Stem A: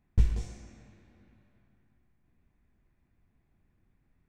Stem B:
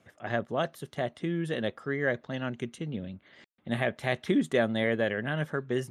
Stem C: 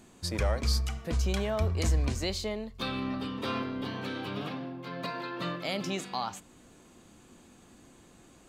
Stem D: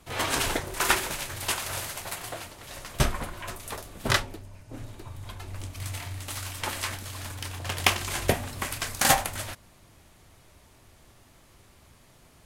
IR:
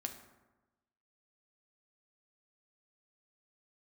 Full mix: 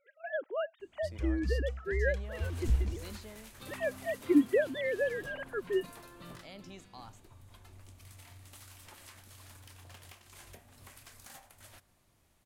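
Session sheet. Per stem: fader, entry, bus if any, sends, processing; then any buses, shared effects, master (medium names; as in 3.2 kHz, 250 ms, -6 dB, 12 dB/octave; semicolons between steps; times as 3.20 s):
-7.5 dB, 2.50 s, no send, none
-3.0 dB, 0.00 s, no send, formants replaced by sine waves
-17.0 dB, 0.80 s, no send, peaking EQ 69 Hz +13.5 dB 1.1 oct
-17.0 dB, 2.25 s, send -9 dB, treble shelf 10 kHz +5 dB; compression 8:1, threshold -34 dBFS, peak gain reduction 19 dB; hard clipper -29.5 dBFS, distortion -17 dB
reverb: on, RT60 1.1 s, pre-delay 4 ms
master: none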